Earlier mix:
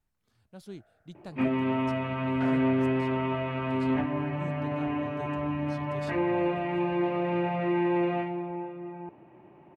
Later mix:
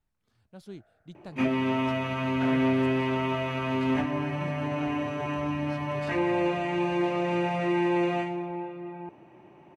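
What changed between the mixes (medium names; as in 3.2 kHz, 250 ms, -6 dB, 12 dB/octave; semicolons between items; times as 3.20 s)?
first sound: remove distance through air 370 m; master: add treble shelf 7.5 kHz -5.5 dB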